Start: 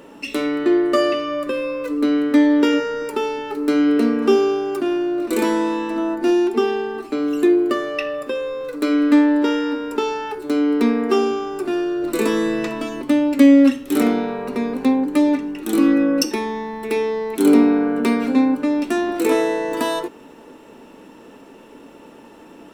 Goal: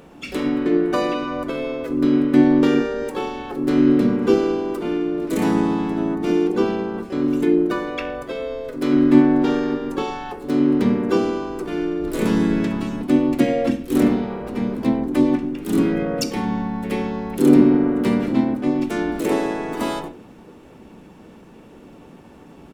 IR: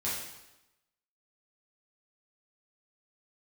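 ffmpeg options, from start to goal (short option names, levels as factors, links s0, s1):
-filter_complex "[0:a]asplit=2[s0][s1];[s1]bass=f=250:g=13,treble=f=4000:g=-7[s2];[1:a]atrim=start_sample=2205,atrim=end_sample=6174,lowshelf=f=480:g=10[s3];[s2][s3]afir=irnorm=-1:irlink=0,volume=0.15[s4];[s0][s4]amix=inputs=2:normalize=0,asplit=4[s5][s6][s7][s8];[s6]asetrate=22050,aresample=44100,atempo=2,volume=0.2[s9];[s7]asetrate=37084,aresample=44100,atempo=1.18921,volume=0.708[s10];[s8]asetrate=55563,aresample=44100,atempo=0.793701,volume=0.447[s11];[s5][s9][s10][s11]amix=inputs=4:normalize=0,volume=0.447"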